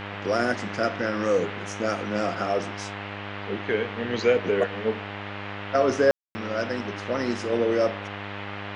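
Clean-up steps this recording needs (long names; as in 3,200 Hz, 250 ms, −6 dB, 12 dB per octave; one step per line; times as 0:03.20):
hum removal 101 Hz, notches 21
ambience match 0:06.11–0:06.35
noise reduction from a noise print 30 dB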